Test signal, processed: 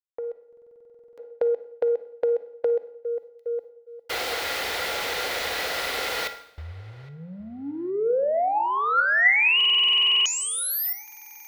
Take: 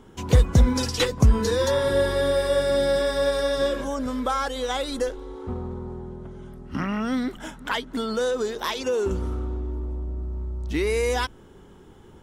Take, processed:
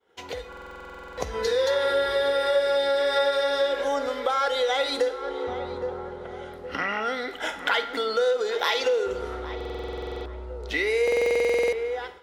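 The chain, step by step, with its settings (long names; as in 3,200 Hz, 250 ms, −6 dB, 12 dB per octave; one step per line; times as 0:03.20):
in parallel at −10.5 dB: soft clipping −20.5 dBFS
on the sum: high-pass filter 69 Hz 12 dB per octave
hollow resonant body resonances 490/730/1,400/2,000 Hz, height 7 dB, ringing for 25 ms
on a send: feedback echo with a low-pass in the loop 814 ms, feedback 30%, low-pass 1,800 Hz, level −16 dB
on the sum: downward compressor 4 to 1, threshold −27 dBFS
downward expander −38 dBFS
low-shelf EQ 240 Hz −5.5 dB
tuned comb filter 280 Hz, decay 0.52 s, harmonics odd, mix 70%
automatic gain control gain up to 11 dB
graphic EQ with 10 bands 125 Hz −11 dB, 250 Hz −8 dB, 500 Hz +6 dB, 2,000 Hz +6 dB, 4,000 Hz +8 dB, 8,000 Hz −4 dB
four-comb reverb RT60 0.7 s, DRR 12 dB
buffer that repeats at 0:00.48/0:09.56/0:11.03, samples 2,048, times 14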